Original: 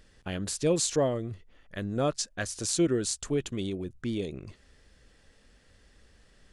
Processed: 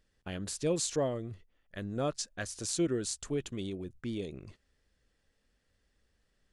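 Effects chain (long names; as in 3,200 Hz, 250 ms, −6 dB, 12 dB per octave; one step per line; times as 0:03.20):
noise gate −48 dBFS, range −10 dB
level −5 dB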